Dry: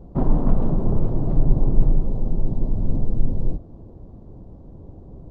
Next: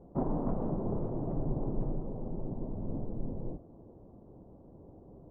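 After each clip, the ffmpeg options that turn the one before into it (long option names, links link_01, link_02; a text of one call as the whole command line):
ffmpeg -i in.wav -af "lowpass=1000,aemphasis=mode=production:type=bsi,volume=-4dB" out.wav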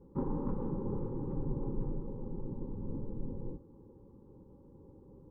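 ffmpeg -i in.wav -af "asuperstop=centerf=670:order=20:qfactor=3.1,volume=-2.5dB" out.wav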